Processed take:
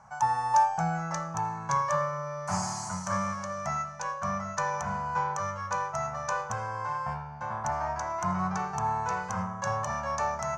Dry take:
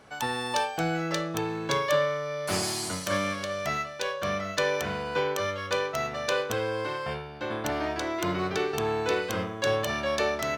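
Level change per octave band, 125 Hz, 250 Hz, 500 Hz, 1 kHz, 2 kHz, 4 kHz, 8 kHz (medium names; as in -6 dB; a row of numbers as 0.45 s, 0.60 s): +0.5 dB, -4.0 dB, -8.5 dB, +4.5 dB, -6.0 dB, -14.0 dB, -2.0 dB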